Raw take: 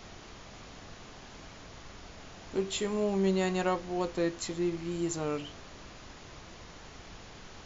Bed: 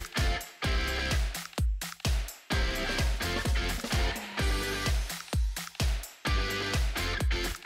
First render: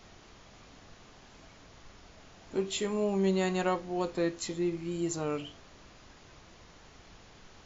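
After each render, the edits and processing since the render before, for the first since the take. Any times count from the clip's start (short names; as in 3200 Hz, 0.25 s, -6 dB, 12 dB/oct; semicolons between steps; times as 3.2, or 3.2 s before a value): noise print and reduce 6 dB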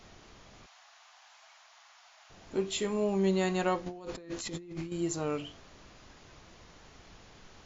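0.66–2.3 steep high-pass 690 Hz 48 dB/oct; 3.86–4.92 negative-ratio compressor -42 dBFS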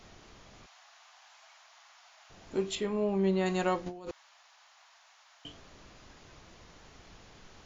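2.75–3.46 air absorption 170 m; 4.11–5.45 room tone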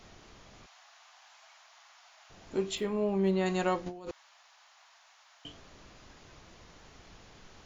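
2.77–3.32 median filter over 5 samples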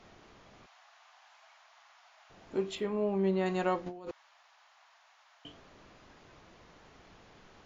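LPF 2500 Hz 6 dB/oct; low shelf 110 Hz -8.5 dB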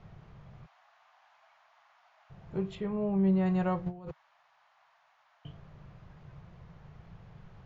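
LPF 1400 Hz 6 dB/oct; resonant low shelf 200 Hz +9.5 dB, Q 3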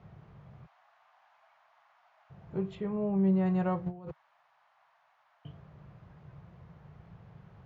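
HPF 62 Hz; high shelf 2800 Hz -8 dB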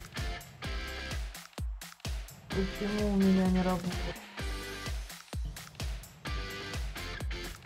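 add bed -8.5 dB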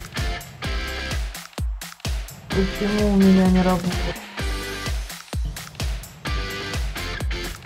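gain +11 dB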